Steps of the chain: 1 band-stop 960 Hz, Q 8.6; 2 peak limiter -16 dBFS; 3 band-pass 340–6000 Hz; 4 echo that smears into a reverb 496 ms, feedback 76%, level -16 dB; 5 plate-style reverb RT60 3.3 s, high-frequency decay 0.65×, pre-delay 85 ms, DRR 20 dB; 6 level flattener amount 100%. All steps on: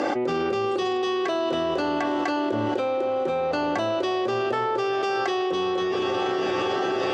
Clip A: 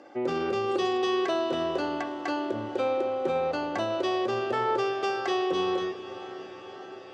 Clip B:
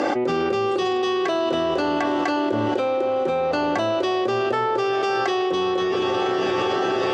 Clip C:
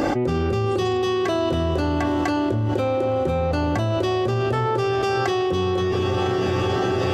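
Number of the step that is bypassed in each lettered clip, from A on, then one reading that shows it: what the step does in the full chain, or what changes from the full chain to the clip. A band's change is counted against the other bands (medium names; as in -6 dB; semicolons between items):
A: 6, momentary loudness spread change +12 LU; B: 2, loudness change +3.0 LU; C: 3, 125 Hz band +16.0 dB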